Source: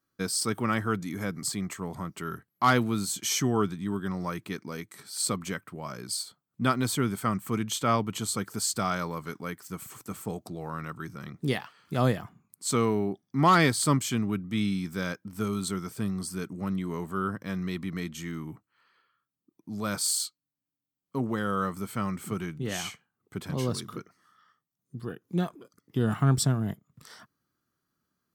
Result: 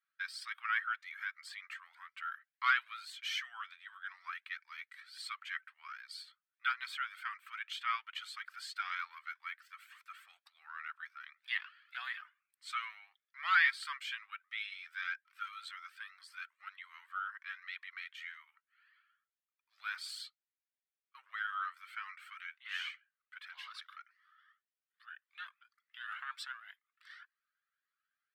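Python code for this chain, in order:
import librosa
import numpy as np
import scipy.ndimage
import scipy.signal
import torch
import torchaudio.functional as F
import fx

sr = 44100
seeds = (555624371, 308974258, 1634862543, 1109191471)

y = scipy.signal.sosfilt(scipy.signal.butter(6, 1500.0, 'highpass', fs=sr, output='sos'), x)
y = fx.air_absorb(y, sr, metres=450.0)
y = fx.comb_cascade(y, sr, direction='rising', hz=1.9)
y = F.gain(torch.from_numpy(y), 9.0).numpy()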